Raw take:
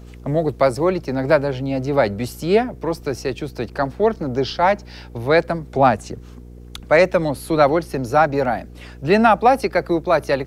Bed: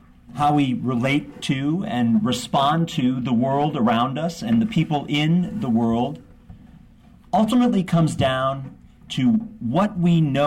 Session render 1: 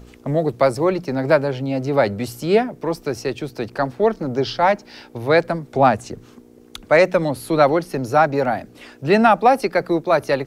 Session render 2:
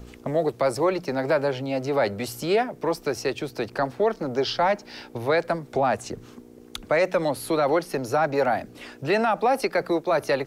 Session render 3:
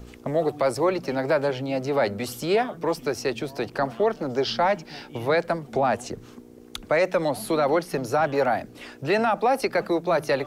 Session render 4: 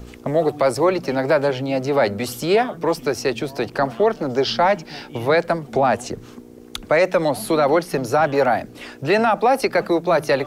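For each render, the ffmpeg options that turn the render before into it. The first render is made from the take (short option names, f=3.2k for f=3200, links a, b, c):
-af "bandreject=f=60:t=h:w=4,bandreject=f=120:t=h:w=4,bandreject=f=180:t=h:w=4"
-filter_complex "[0:a]acrossover=split=380[a][b];[a]acompressor=threshold=-32dB:ratio=6[c];[b]alimiter=limit=-14dB:level=0:latency=1:release=36[d];[c][d]amix=inputs=2:normalize=0"
-filter_complex "[1:a]volume=-23.5dB[a];[0:a][a]amix=inputs=2:normalize=0"
-af "volume=5dB"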